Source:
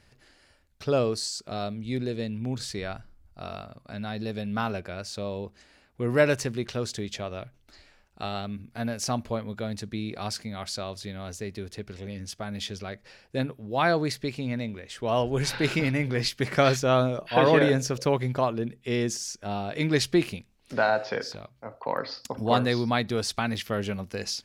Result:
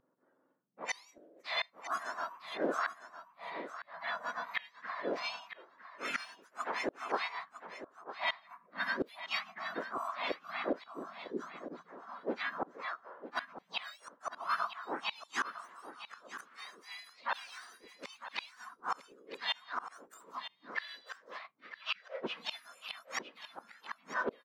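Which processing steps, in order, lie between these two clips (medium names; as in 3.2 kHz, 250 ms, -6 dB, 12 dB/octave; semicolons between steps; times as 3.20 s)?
spectrum inverted on a logarithmic axis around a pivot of 1.6 kHz; level-controlled noise filter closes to 530 Hz, open at -25 dBFS; spectral noise reduction 12 dB; high-order bell 1.9 kHz +12.5 dB 2.3 oct; inverted gate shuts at -20 dBFS, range -31 dB; time-frequency box 10.84–11.90 s, 440–2900 Hz -9 dB; harmony voices +3 st -7 dB; on a send: delay 955 ms -12 dB; on the sum: trim -2 dB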